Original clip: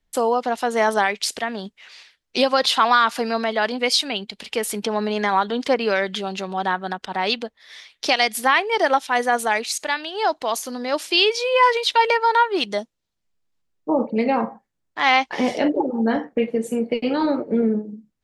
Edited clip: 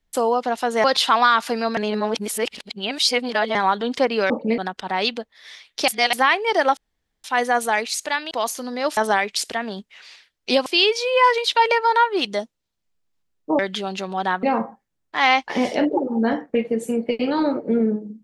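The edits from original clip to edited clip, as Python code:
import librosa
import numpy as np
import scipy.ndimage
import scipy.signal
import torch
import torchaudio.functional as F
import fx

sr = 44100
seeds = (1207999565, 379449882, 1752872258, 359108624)

y = fx.edit(x, sr, fx.move(start_s=0.84, length_s=1.69, to_s=11.05),
    fx.reverse_span(start_s=3.46, length_s=1.78),
    fx.swap(start_s=5.99, length_s=0.84, other_s=13.98, other_length_s=0.28),
    fx.reverse_span(start_s=8.13, length_s=0.25),
    fx.insert_room_tone(at_s=9.02, length_s=0.47),
    fx.cut(start_s=10.09, length_s=0.3), tone=tone)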